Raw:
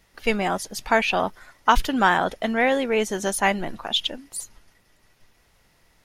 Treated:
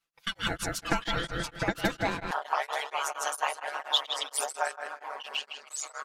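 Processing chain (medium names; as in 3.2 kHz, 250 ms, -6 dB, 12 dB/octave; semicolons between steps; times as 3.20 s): ever faster or slower copies 528 ms, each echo -3 st, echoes 3, each echo -6 dB; harmonic-percussive split harmonic -11 dB; gate -39 dBFS, range -16 dB; filtered feedback delay 159 ms, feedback 37%, low-pass 3.6 kHz, level -3.5 dB; compression 4:1, threshold -22 dBFS, peak gain reduction 9 dB; high-pass 690 Hz 24 dB/octave; comb 5.9 ms, depth 88%; ring modulator 690 Hz, from 2.31 s 72 Hz; dynamic bell 2.1 kHz, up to -8 dB, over -44 dBFS, Q 1.8; tremolo of two beating tones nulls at 4.3 Hz; trim +3 dB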